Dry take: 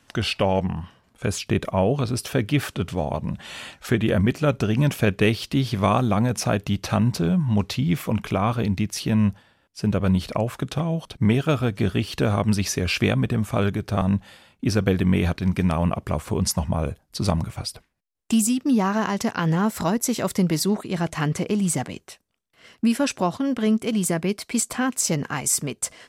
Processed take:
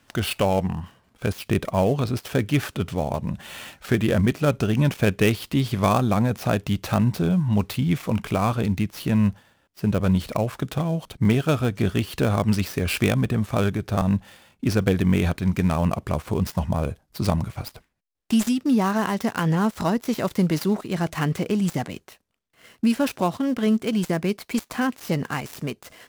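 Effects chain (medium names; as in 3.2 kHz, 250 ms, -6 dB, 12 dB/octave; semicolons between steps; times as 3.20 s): dead-time distortion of 0.064 ms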